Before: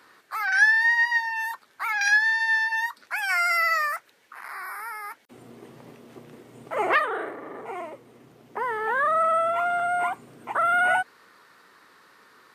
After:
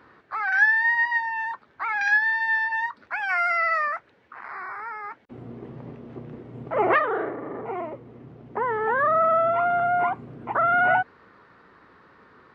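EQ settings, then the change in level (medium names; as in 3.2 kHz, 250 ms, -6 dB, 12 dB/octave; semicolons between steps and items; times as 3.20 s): tape spacing loss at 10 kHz 36 dB; bass shelf 73 Hz +10.5 dB; bass shelf 160 Hz +7 dB; +5.5 dB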